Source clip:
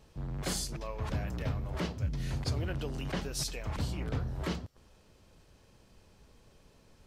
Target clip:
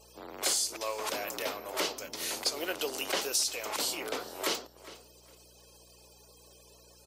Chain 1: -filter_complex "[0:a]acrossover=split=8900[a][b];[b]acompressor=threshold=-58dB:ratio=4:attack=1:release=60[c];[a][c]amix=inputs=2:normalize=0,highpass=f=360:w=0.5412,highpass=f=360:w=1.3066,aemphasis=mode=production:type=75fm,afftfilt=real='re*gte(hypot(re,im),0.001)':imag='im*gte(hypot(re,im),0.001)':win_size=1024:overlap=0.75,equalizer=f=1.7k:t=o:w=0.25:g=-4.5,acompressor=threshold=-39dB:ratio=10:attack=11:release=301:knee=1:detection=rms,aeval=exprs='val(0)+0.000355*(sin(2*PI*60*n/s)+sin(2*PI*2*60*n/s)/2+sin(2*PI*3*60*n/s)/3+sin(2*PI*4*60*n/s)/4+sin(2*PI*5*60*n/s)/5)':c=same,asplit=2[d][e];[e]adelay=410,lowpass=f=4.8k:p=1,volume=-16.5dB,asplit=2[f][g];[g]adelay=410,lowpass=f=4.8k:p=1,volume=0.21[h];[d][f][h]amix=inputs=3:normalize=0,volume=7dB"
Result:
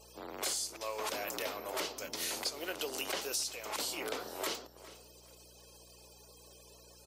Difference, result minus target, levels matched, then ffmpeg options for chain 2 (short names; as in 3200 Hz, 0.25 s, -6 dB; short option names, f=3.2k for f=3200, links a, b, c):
compressor: peak gain reduction +7 dB
-filter_complex "[0:a]acrossover=split=8900[a][b];[b]acompressor=threshold=-58dB:ratio=4:attack=1:release=60[c];[a][c]amix=inputs=2:normalize=0,highpass=f=360:w=0.5412,highpass=f=360:w=1.3066,aemphasis=mode=production:type=75fm,afftfilt=real='re*gte(hypot(re,im),0.001)':imag='im*gte(hypot(re,im),0.001)':win_size=1024:overlap=0.75,equalizer=f=1.7k:t=o:w=0.25:g=-4.5,acompressor=threshold=-31.5dB:ratio=10:attack=11:release=301:knee=1:detection=rms,aeval=exprs='val(0)+0.000355*(sin(2*PI*60*n/s)+sin(2*PI*2*60*n/s)/2+sin(2*PI*3*60*n/s)/3+sin(2*PI*4*60*n/s)/4+sin(2*PI*5*60*n/s)/5)':c=same,asplit=2[d][e];[e]adelay=410,lowpass=f=4.8k:p=1,volume=-16.5dB,asplit=2[f][g];[g]adelay=410,lowpass=f=4.8k:p=1,volume=0.21[h];[d][f][h]amix=inputs=3:normalize=0,volume=7dB"